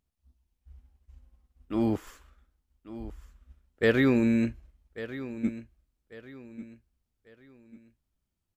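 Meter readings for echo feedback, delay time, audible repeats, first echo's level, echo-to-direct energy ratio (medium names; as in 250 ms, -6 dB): 34%, 1144 ms, 3, -14.5 dB, -14.0 dB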